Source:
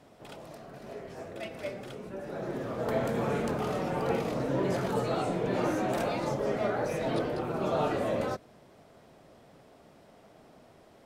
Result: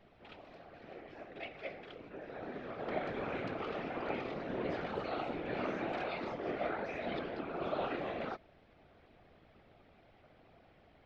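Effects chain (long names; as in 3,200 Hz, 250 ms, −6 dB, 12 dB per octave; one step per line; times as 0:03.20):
loudspeaker in its box 280–3,900 Hz, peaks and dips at 500 Hz −7 dB, 940 Hz −7 dB, 2,300 Hz +4 dB
mains hum 60 Hz, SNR 27 dB
random phases in short frames
level −4.5 dB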